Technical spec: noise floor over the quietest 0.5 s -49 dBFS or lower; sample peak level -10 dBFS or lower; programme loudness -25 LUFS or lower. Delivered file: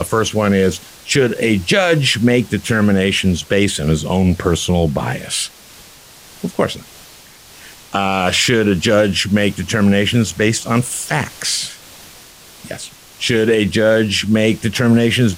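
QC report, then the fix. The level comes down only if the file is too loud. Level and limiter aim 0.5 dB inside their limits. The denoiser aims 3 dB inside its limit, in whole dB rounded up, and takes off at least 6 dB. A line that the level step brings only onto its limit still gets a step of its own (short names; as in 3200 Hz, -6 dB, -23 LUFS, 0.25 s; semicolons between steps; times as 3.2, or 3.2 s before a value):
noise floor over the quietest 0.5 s -42 dBFS: fail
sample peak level -3.0 dBFS: fail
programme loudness -15.5 LUFS: fail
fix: gain -10 dB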